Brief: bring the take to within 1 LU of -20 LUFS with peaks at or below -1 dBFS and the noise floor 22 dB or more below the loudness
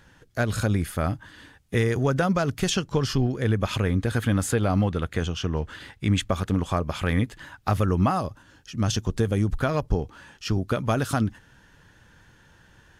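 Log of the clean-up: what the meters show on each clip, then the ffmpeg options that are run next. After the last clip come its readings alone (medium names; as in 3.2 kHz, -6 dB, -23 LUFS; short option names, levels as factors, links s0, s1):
loudness -25.5 LUFS; peak level -10.0 dBFS; loudness target -20.0 LUFS
-> -af "volume=1.88"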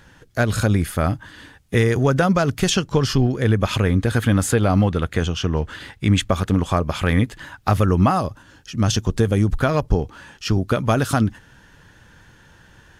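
loudness -20.0 LUFS; peak level -4.5 dBFS; noise floor -51 dBFS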